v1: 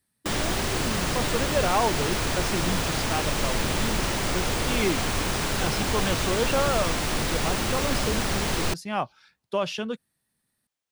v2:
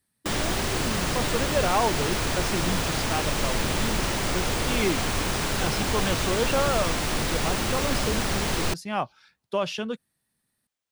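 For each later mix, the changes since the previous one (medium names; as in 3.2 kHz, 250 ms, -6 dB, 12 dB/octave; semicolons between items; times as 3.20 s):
no change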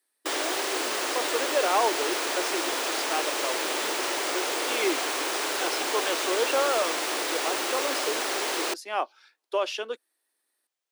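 master: add steep high-pass 310 Hz 48 dB/octave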